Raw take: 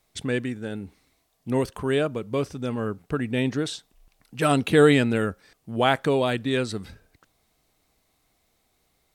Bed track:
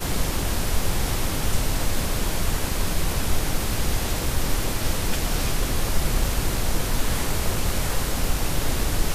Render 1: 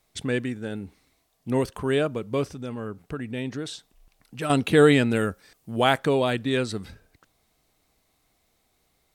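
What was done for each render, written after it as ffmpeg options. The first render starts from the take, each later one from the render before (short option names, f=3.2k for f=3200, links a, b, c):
-filter_complex "[0:a]asettb=1/sr,asplit=3[a][b][c];[a]atrim=end=2.474[d];[b]atrim=start=2.47:end=4.5,asetpts=PTS-STARTPTS,afade=t=in:d=0.004:c=qsin,afade=t=out:st=2.026:d=0.004:c=qsin,acompressor=threshold=-38dB:ratio=1.5:attack=3.2:release=140:knee=1:detection=peak[e];[c]atrim=start=4.496[f];[d][e]acrossfade=d=0.004:c1=hsin:c2=qsin[g];[g][f]acrossfade=d=0.004:c1=qsin:c2=hsin,asettb=1/sr,asplit=3[h][i][j];[h]atrim=end=5.114[k];[i]atrim=start=5.11:end=5.98,asetpts=PTS-STARTPTS,afade=t=in:d=0.004:c=qsin,afade=t=out:st=0.866:d=0.004:c=qsin,highshelf=f=6.1k:g=7[l];[j]atrim=start=5.976[m];[k][l]acrossfade=d=0.004:c1=hsin:c2=qsin[n];[n][m]acrossfade=d=0.004:c1=qsin:c2=hsin"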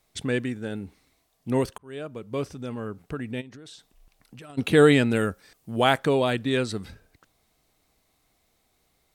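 -filter_complex "[0:a]asplit=3[a][b][c];[a]afade=t=out:st=3.4:d=0.02[d];[b]acompressor=threshold=-41dB:ratio=12:attack=3.2:release=140:knee=1:detection=peak,afade=t=in:st=3.4:d=0.02,afade=t=out:st=4.57:d=0.02[e];[c]afade=t=in:st=4.57:d=0.02[f];[d][e][f]amix=inputs=3:normalize=0,asplit=2[g][h];[g]atrim=end=1.78,asetpts=PTS-STARTPTS,afade=t=out:st=1.776:d=0.004:c=hsin[i];[h]atrim=start=1.78,asetpts=PTS-STARTPTS,afade=t=in:d=0.9[j];[i][j]concat=n=2:v=0:a=1"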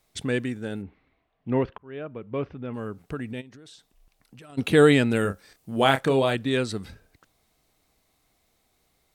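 -filter_complex "[0:a]asplit=3[a][b][c];[a]afade=t=out:st=0.81:d=0.02[d];[b]lowpass=f=2.8k:w=0.5412,lowpass=f=2.8k:w=1.3066,afade=t=in:st=0.81:d=0.02,afade=t=out:st=2.73:d=0.02[e];[c]afade=t=in:st=2.73:d=0.02[f];[d][e][f]amix=inputs=3:normalize=0,asettb=1/sr,asplit=3[g][h][i];[g]atrim=end=5.224[j];[h]atrim=start=5.22:end=6.35,asetpts=PTS-STARTPTS,afade=t=in:d=0.004:c=qsin,afade=t=out:st=1.126:d=0.004:c=qsin,asplit=2[k][l];[l]adelay=30,volume=-8.5dB[m];[k][m]amix=inputs=2:normalize=0,atrim=end_sample=49833[n];[i]atrim=start=6.346[o];[j][n]acrossfade=d=0.004:c1=hsin:c2=qsin[p];[p][o]acrossfade=d=0.004:c1=qsin:c2=hsin,asplit=3[q][r][s];[q]atrim=end=3.332[t];[r]atrim=start=3.328:end=4.522,asetpts=PTS-STARTPTS,volume=-3dB[u];[s]atrim=start=4.518[v];[t][u]acrossfade=d=0.004:c1=hsin:c2=hsin[w];[w][v]acrossfade=d=0.004:c1=hsin:c2=hsin"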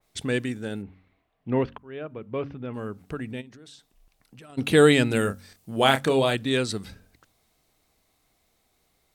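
-af "bandreject=f=46.73:t=h:w=4,bandreject=f=93.46:t=h:w=4,bandreject=f=140.19:t=h:w=4,bandreject=f=186.92:t=h:w=4,bandreject=f=233.65:t=h:w=4,bandreject=f=280.38:t=h:w=4,adynamicequalizer=threshold=0.0112:dfrequency=2900:dqfactor=0.7:tfrequency=2900:tqfactor=0.7:attack=5:release=100:ratio=0.375:range=2.5:mode=boostabove:tftype=highshelf"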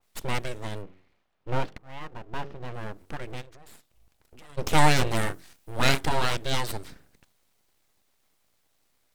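-af "aeval=exprs='abs(val(0))':c=same"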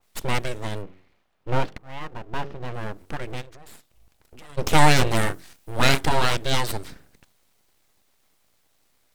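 -af "volume=4.5dB,alimiter=limit=-2dB:level=0:latency=1"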